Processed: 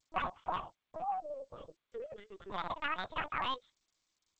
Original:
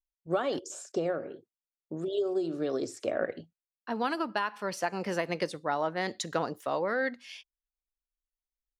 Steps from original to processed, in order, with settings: time-frequency box 2.38–5.02 s, 320–2900 Hz -21 dB; dynamic bell 170 Hz, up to -7 dB, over -56 dBFS, Q 6.5; speed mistake 7.5 ips tape played at 15 ips; LPC vocoder at 8 kHz pitch kept; trim -5 dB; G.722 64 kbps 16 kHz

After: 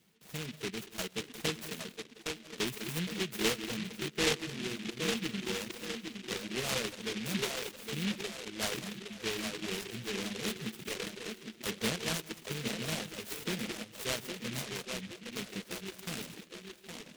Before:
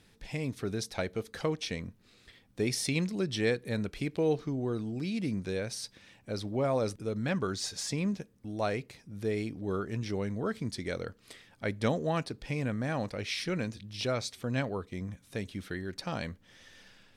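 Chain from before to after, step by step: high-pass 150 Hz 24 dB/octave; distance through air 180 m; comb of notches 280 Hz; feedback echo behind a band-pass 813 ms, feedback 51%, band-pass 410 Hz, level -4 dB; gated-style reverb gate 230 ms rising, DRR 6.5 dB; reverb removal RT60 1.2 s; delay time shaken by noise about 2.6 kHz, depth 0.33 ms; trim -2 dB

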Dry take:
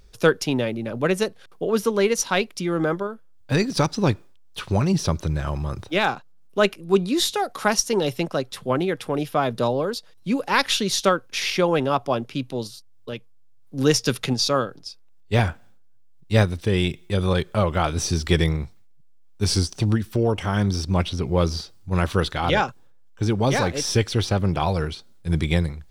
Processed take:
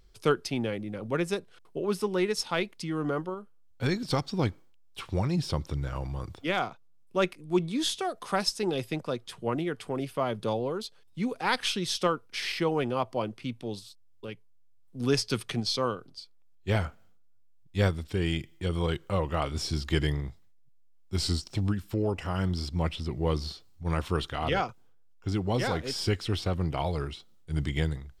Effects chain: speed mistake 48 kHz file played as 44.1 kHz; trim -7.5 dB

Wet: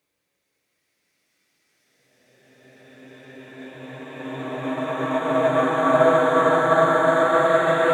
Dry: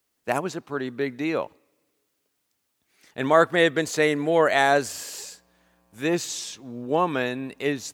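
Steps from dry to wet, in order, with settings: two-slope reverb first 0.98 s, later 2.9 s, from -19 dB, DRR 7 dB; Paulstretch 12×, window 0.50 s, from 2.81 s; upward expansion 1.5:1, over -32 dBFS; trim +1.5 dB

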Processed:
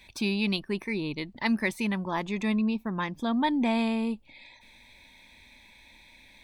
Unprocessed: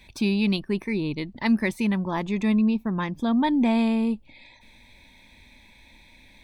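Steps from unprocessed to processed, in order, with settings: bass shelf 440 Hz -7 dB

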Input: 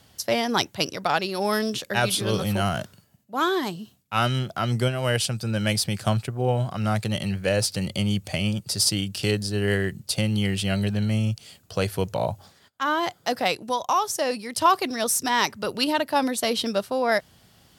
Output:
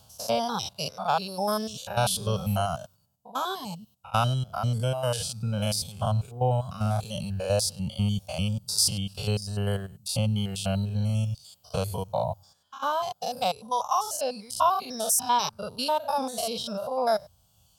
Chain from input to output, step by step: spectrogram pixelated in time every 100 ms; reverb removal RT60 1.3 s; static phaser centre 800 Hz, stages 4; trim +3.5 dB

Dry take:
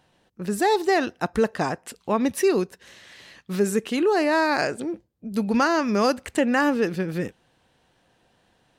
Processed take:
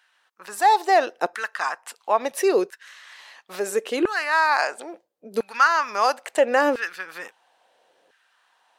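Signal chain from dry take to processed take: LFO high-pass saw down 0.74 Hz 420–1600 Hz

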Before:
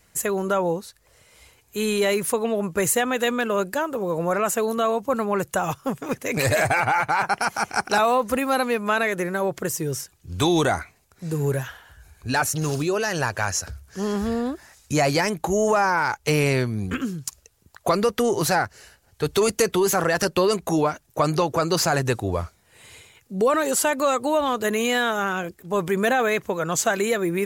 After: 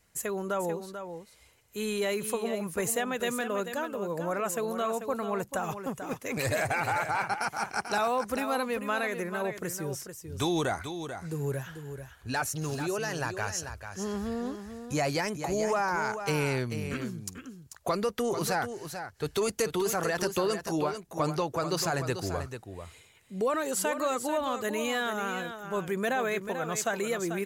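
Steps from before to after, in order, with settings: delay 440 ms -9 dB; trim -8.5 dB

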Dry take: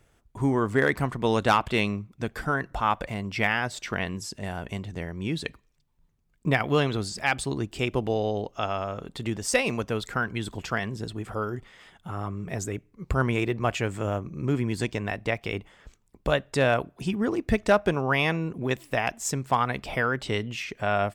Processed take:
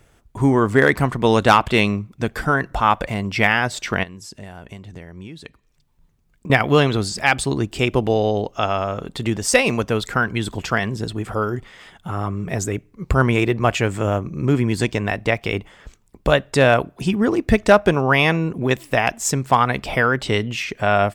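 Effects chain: 4.03–6.50 s: compression 8:1, threshold -42 dBFS, peak gain reduction 19.5 dB; trim +8 dB

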